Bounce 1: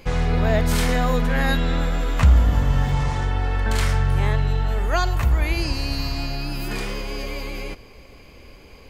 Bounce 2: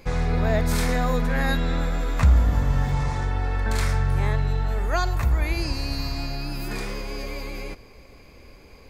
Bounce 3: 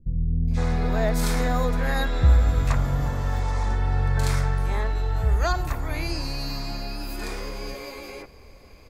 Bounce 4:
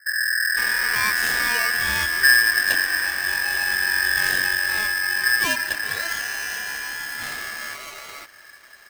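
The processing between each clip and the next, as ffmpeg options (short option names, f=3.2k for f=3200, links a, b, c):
-af "equalizer=f=3k:w=6.6:g=-9,volume=-2.5dB"
-filter_complex "[0:a]acrossover=split=240|2400[a][b][c];[c]adelay=480[d];[b]adelay=510[e];[a][e][d]amix=inputs=3:normalize=0"
-af "aeval=exprs='val(0)*sgn(sin(2*PI*1700*n/s))':c=same"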